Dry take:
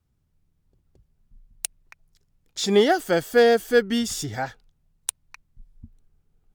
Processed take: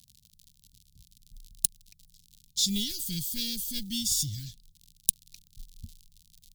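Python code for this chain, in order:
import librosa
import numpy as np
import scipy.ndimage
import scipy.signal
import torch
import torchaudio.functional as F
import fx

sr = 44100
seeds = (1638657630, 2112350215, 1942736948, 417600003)

y = fx.diode_clip(x, sr, knee_db=-15.5)
y = fx.quant_float(y, sr, bits=4)
y = fx.high_shelf(y, sr, hz=10000.0, db=8.5)
y = fx.dmg_crackle(y, sr, seeds[0], per_s=84.0, level_db=-37.0)
y = scipy.signal.sosfilt(scipy.signal.ellip(3, 1.0, 60, [190.0, 3700.0], 'bandstop', fs=sr, output='sos'), y)
y = fx.dynamic_eq(y, sr, hz=210.0, q=1.1, threshold_db=-45.0, ratio=4.0, max_db=-6)
y = y * 10.0 ** (2.5 / 20.0)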